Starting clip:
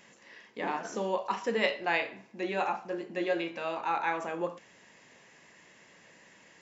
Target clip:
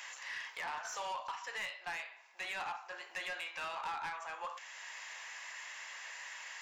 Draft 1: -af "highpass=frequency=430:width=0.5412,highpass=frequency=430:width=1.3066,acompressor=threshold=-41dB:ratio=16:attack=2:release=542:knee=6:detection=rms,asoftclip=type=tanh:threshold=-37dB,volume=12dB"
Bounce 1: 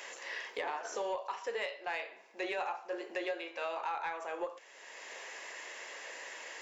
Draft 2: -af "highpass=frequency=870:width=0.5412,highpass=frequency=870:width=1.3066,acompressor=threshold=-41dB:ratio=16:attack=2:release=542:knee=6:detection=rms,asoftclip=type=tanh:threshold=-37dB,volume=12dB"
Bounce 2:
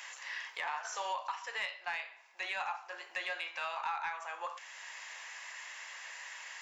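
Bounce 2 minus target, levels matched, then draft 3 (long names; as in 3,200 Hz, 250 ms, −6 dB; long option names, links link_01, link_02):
soft clipping: distortion −13 dB
-af "highpass=frequency=870:width=0.5412,highpass=frequency=870:width=1.3066,acompressor=threshold=-41dB:ratio=16:attack=2:release=542:knee=6:detection=rms,asoftclip=type=tanh:threshold=-47dB,volume=12dB"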